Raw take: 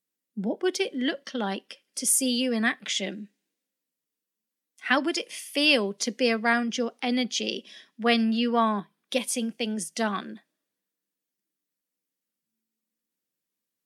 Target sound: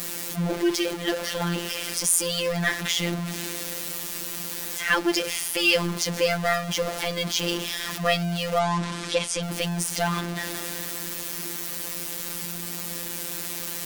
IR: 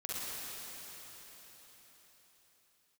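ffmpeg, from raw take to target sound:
-filter_complex "[0:a]aeval=exprs='val(0)+0.5*0.0631*sgn(val(0))':c=same,asplit=3[s0][s1][s2];[s0]afade=t=out:st=8.58:d=0.02[s3];[s1]lowpass=f=8500:w=0.5412,lowpass=f=8500:w=1.3066,afade=t=in:st=8.58:d=0.02,afade=t=out:st=9.41:d=0.02[s4];[s2]afade=t=in:st=9.41:d=0.02[s5];[s3][s4][s5]amix=inputs=3:normalize=0,afftfilt=real='hypot(re,im)*cos(PI*b)':imag='0':win_size=1024:overlap=0.75,volume=1.26"

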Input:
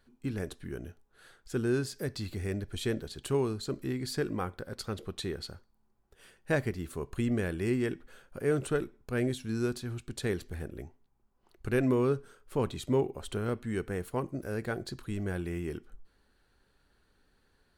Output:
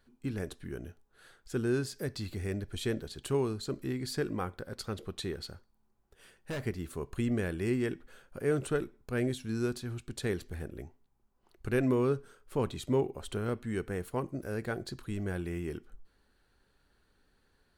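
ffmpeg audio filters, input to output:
-filter_complex "[0:a]asettb=1/sr,asplit=3[s0][s1][s2];[s0]atrim=end=5.334[s3];[s1]atrim=start=5.33:end=6.64,asetpts=PTS-STARTPTS,afade=t=in:d=0.004:c=qsin,afade=t=out:st=1.306:d=0.004:c=qsin,asoftclip=type=hard:threshold=0.0237[s4];[s2]atrim=start=6.636[s5];[s3][s4]acrossfade=d=0.004:c1=hsin:c2=qsin[s6];[s6][s5]acrossfade=d=0.004:c1=qsin:c2=hsin,volume=0.891"

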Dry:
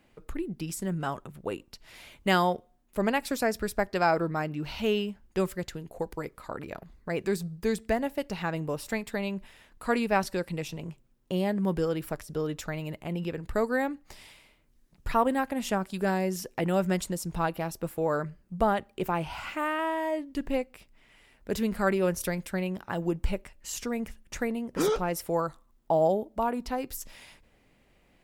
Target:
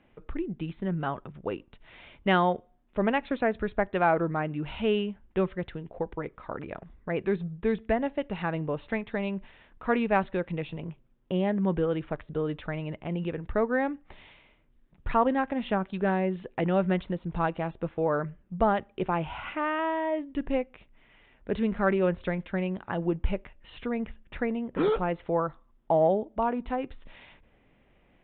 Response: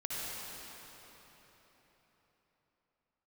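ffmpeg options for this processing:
-af "aresample=8000,aresample=44100,acontrast=21,aemphasis=mode=reproduction:type=50fm,volume=0.631"

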